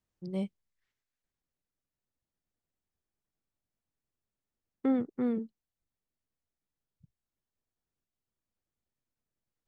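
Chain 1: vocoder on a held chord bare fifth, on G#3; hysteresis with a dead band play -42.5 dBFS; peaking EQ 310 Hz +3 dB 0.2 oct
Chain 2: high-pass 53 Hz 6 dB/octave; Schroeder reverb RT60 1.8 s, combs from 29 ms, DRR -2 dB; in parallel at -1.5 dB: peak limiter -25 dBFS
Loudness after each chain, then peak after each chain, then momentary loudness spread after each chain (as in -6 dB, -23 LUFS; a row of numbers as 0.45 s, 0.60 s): -33.5 LUFS, -27.0 LUFS; -20.5 dBFS, -12.0 dBFS; 6 LU, 19 LU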